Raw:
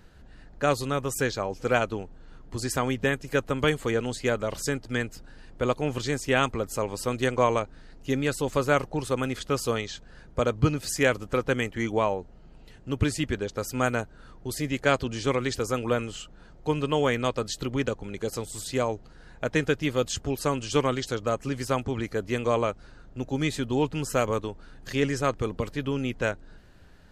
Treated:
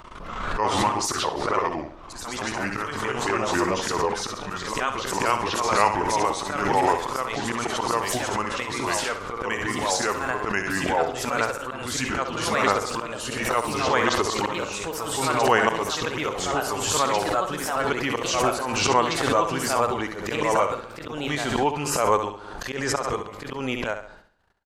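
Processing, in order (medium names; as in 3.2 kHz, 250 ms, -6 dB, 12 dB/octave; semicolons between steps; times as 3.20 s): pitch bend over the whole clip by -5.5 st ending unshifted; gate -49 dBFS, range -31 dB; bass shelf 310 Hz -10 dB; slow attack 188 ms; tempo 1.1×; peaking EQ 890 Hz +10 dB 1.4 oct; flutter echo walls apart 11.7 m, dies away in 0.49 s; ever faster or slower copies 114 ms, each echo +2 st, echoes 2; swell ahead of each attack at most 38 dB/s; trim +4.5 dB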